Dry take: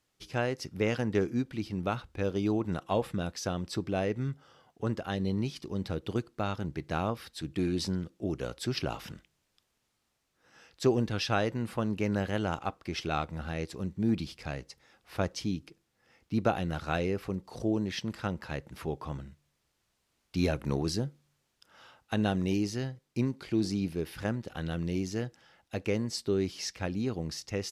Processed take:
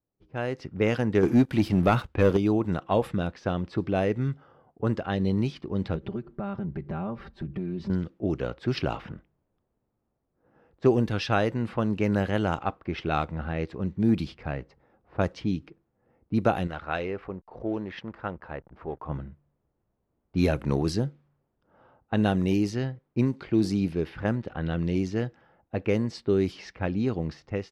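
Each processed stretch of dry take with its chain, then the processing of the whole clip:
1.23–2.37 HPF 42 Hz + sample leveller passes 2
5.95–7.9 low shelf 260 Hz +10 dB + comb 5.1 ms, depth 98% + compressor 5:1, threshold -36 dBFS
16.67–19.09 bell 140 Hz -10.5 dB 2.9 oct + backlash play -52.5 dBFS
whole clip: low-pass opened by the level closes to 620 Hz, open at -25 dBFS; dynamic EQ 5900 Hz, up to -6 dB, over -56 dBFS, Q 0.71; AGC gain up to 11 dB; gain -5.5 dB

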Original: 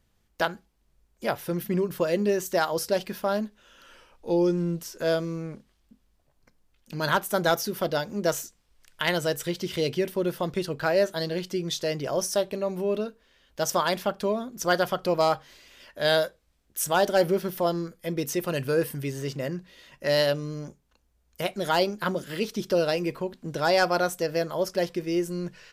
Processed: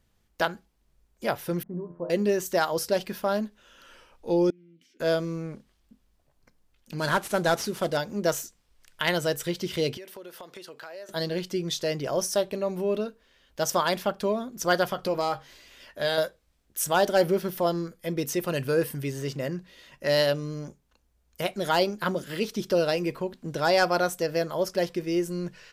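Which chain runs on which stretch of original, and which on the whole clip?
1.63–2.1 LPF 1000 Hz 24 dB/oct + resonator 86 Hz, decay 0.48 s, mix 80%
4.5–5 compressor 12:1, threshold -36 dBFS + vowel filter i + bell 2600 Hz +4 dB 0.96 oct
6.98–7.97 CVSD 64 kbps + de-esser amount 55%
9.97–11.09 Bessel high-pass 530 Hz + compressor 5:1, threshold -40 dBFS
14.9–16.18 compressor 2:1, threshold -25 dBFS + doubler 15 ms -9.5 dB
whole clip: dry

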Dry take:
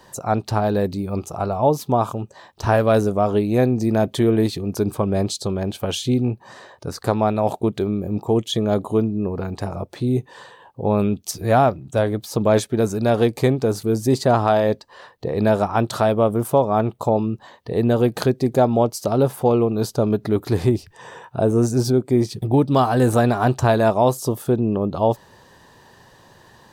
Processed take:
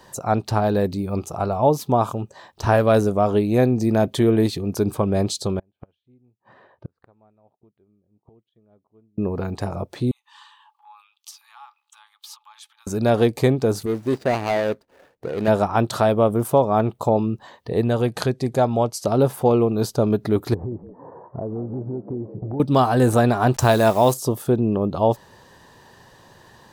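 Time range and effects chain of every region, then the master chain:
5.59–9.18 flipped gate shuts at -20 dBFS, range -29 dB + air absorption 490 m + upward expander, over -56 dBFS
10.11–12.87 compressor 16:1, threshold -28 dBFS + rippled Chebyshev high-pass 820 Hz, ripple 9 dB
13.86–15.48 median filter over 41 samples + low shelf 190 Hz -12 dB
17.81–19.05 LPF 12000 Hz 24 dB/oct + bell 310 Hz -5 dB 1.8 oct
20.54–22.6 inverse Chebyshev low-pass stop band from 3200 Hz, stop band 60 dB + compressor 4:1, threshold -27 dBFS + frequency-shifting echo 0.173 s, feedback 51%, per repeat +81 Hz, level -14 dB
23.54–24.14 level-crossing sampler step -39 dBFS + bell 12000 Hz +9 dB 2.6 oct
whole clip: dry

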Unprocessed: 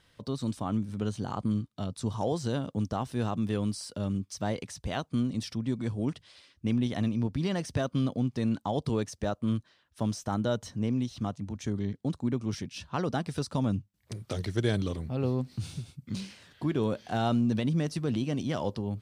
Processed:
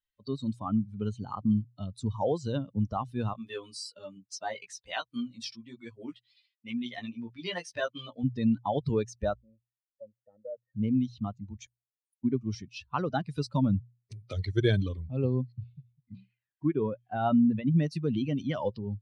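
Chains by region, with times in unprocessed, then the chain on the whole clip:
3.33–8.24 HPF 610 Hz 6 dB/oct + doubler 17 ms -2 dB
9.4–10.74 vocal tract filter e + high shelf 2700 Hz -8.5 dB
11.65–12.23 spectral limiter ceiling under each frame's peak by 24 dB + inverse Chebyshev high-pass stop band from 2400 Hz, stop band 80 dB
15.52–17.79 LPF 2800 Hz + upward expander, over -39 dBFS
whole clip: per-bin expansion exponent 2; Bessel low-pass 4800 Hz, order 2; notches 60/120 Hz; gain +6.5 dB

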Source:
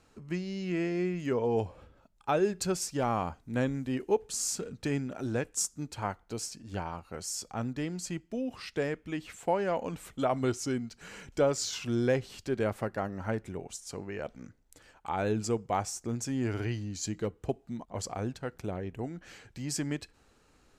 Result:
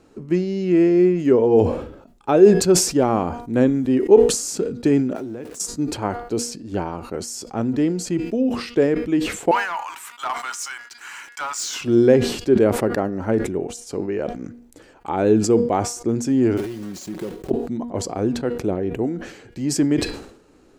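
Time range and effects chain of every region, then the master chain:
5.16–5.6 zero-crossing step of -42.5 dBFS + HPF 76 Hz + compressor 16:1, threshold -40 dBFS
9.51–11.81 steep high-pass 900 Hz 48 dB/oct + bell 4300 Hz -5 dB 0.97 oct + sample leveller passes 2
16.57–17.51 block floating point 3-bit + comb 5.4 ms, depth 51% + compressor 8:1, threshold -39 dBFS
whole clip: bell 340 Hz +13 dB 1.7 oct; de-hum 238.7 Hz, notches 21; sustainer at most 81 dB/s; gain +4 dB

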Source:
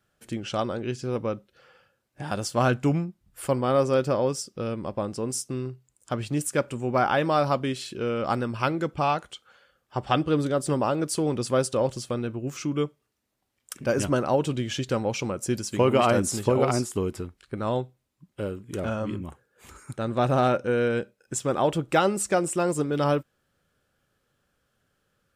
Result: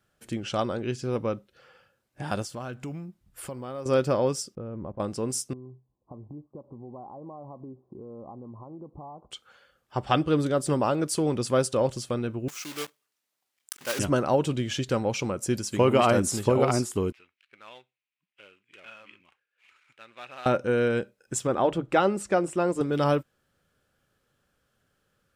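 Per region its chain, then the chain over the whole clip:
2.42–3.86 short-mantissa float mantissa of 6-bit + compressor 3:1, threshold -37 dBFS
4.55–5 LPF 1100 Hz + low shelf 100 Hz +8 dB + level quantiser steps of 18 dB
5.53–9.31 compressor, threshold -38 dBFS + rippled Chebyshev low-pass 1100 Hz, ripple 3 dB
12.48–13.99 block floating point 3-bit + HPF 1300 Hz 6 dB/oct
17.12–20.46 switching dead time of 0.079 ms + band-pass 2500 Hz, Q 3.5
21.47–22.81 LPF 2400 Hz 6 dB/oct + notch 150 Hz, Q 5
whole clip: dry

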